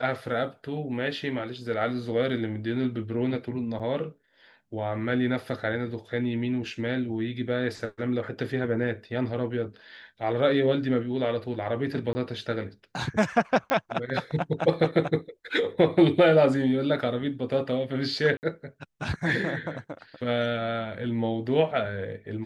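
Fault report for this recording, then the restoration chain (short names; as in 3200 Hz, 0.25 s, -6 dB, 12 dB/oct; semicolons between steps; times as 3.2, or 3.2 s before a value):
3.79–3.8 gap 6.9 ms
12.13–12.15 gap 20 ms
13.7 pop -12 dBFS
18.37–18.43 gap 59 ms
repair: de-click; interpolate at 3.79, 6.9 ms; interpolate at 12.13, 20 ms; interpolate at 18.37, 59 ms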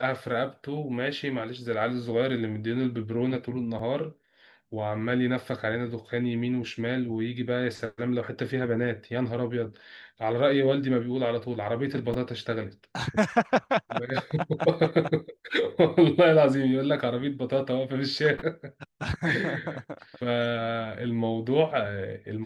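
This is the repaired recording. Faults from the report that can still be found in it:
none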